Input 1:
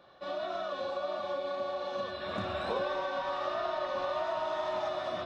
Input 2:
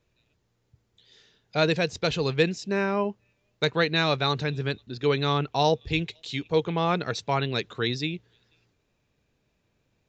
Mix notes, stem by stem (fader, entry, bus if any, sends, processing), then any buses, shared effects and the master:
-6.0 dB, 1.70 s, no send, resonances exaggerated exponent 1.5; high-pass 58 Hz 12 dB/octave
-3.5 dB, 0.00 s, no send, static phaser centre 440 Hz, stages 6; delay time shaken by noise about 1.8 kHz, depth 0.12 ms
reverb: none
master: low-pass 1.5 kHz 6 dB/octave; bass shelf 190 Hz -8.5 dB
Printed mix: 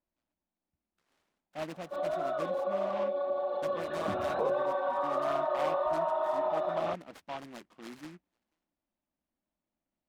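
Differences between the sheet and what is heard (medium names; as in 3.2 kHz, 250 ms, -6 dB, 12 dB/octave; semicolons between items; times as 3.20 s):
stem 1 -6.0 dB -> +4.5 dB; stem 2 -3.5 dB -> -9.5 dB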